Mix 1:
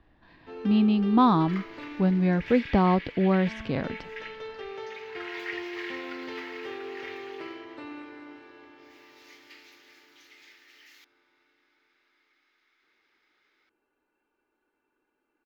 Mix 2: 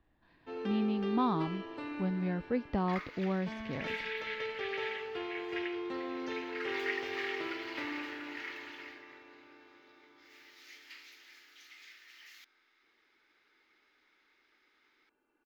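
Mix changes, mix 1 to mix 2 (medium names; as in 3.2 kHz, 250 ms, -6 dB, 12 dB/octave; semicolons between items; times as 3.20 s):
speech -10.5 dB; second sound: entry +1.40 s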